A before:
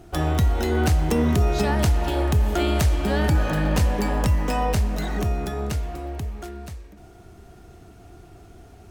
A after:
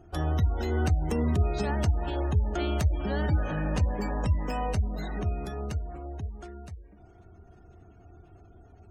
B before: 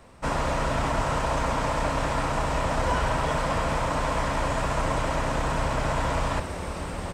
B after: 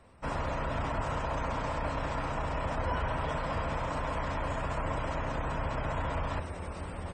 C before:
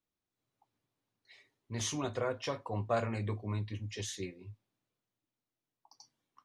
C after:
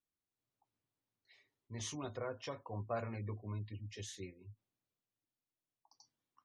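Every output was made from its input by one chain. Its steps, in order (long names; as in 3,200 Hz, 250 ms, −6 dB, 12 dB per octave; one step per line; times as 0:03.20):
gate on every frequency bin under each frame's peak −30 dB strong
parametric band 85 Hz +6.5 dB 0.32 octaves
level −7.5 dB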